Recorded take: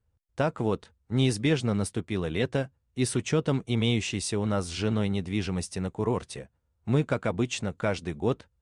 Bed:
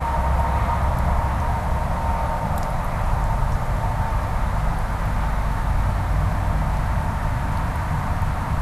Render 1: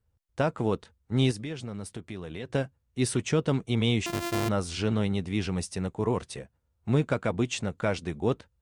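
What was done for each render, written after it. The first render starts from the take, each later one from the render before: 1.31–2.50 s: compression 3:1, threshold -36 dBFS; 4.06–4.49 s: sorted samples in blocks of 128 samples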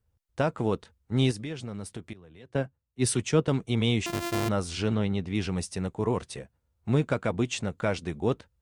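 2.13–3.48 s: three bands expanded up and down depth 100%; 4.95–5.35 s: distance through air 80 m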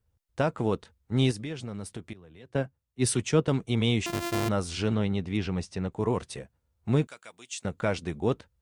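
5.37–5.92 s: distance through air 97 m; 7.07–7.65 s: differentiator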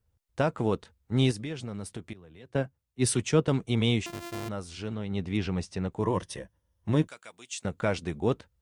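3.95–5.21 s: dip -8 dB, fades 0.15 s; 6.03–7.08 s: rippled EQ curve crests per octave 1.2, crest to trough 8 dB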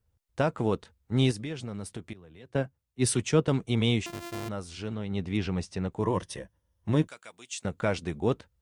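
no audible change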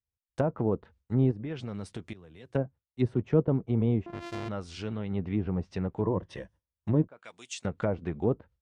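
low-pass that closes with the level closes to 750 Hz, closed at -24.5 dBFS; gate with hold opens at -56 dBFS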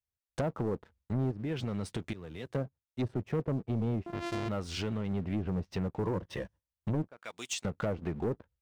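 compression 2:1, threshold -41 dBFS, peak gain reduction 13 dB; waveshaping leveller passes 2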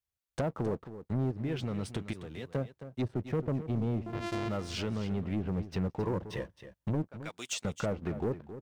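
delay 267 ms -12.5 dB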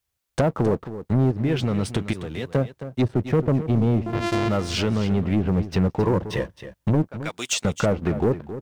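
trim +11.5 dB

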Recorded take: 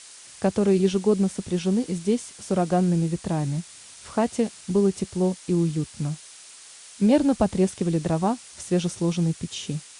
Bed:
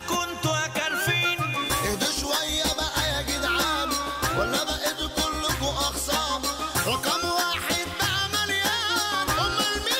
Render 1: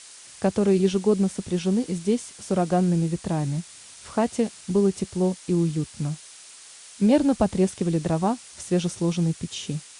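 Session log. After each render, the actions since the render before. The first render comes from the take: no audible change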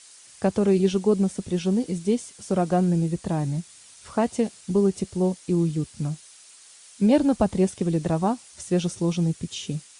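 noise reduction 6 dB, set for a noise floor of -46 dBFS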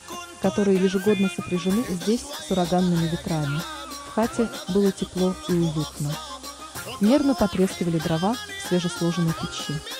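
add bed -9.5 dB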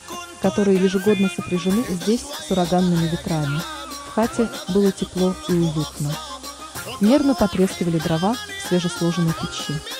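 trim +3 dB

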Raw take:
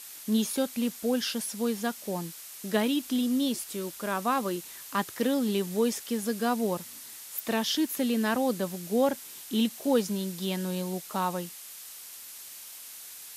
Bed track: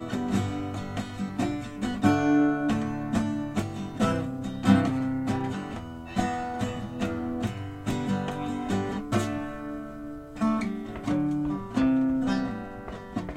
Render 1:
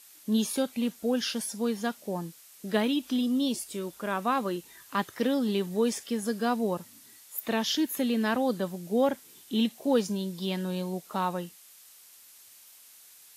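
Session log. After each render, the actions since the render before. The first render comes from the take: noise print and reduce 9 dB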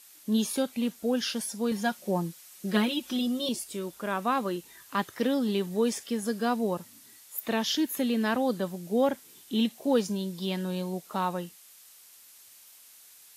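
1.71–3.49 s: comb 5.5 ms, depth 86%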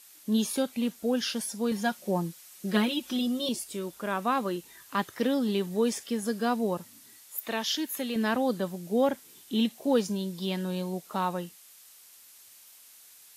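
7.37–8.16 s: bass shelf 370 Hz -9.5 dB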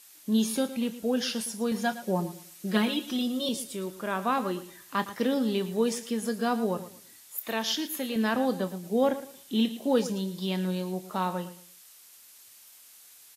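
doubling 27 ms -13 dB; feedback delay 113 ms, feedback 25%, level -14 dB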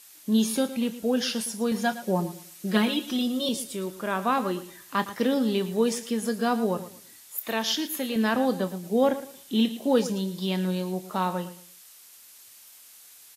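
trim +2.5 dB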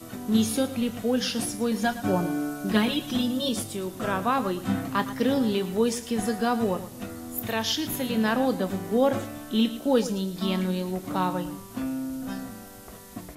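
add bed track -7.5 dB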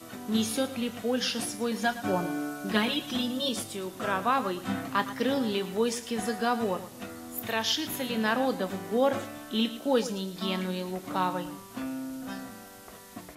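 low-pass 2.5 kHz 6 dB/octave; tilt EQ +2.5 dB/octave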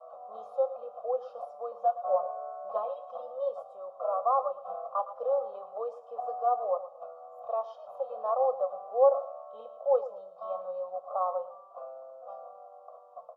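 elliptic band-pass 520–1100 Hz, stop band 40 dB; comb 1.6 ms, depth 92%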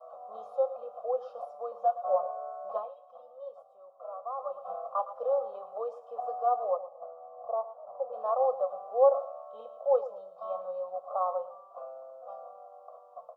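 2.72–4.57 s: dip -11 dB, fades 0.19 s; 6.76–8.12 s: low-pass 1.1 kHz -> 1.2 kHz 24 dB/octave

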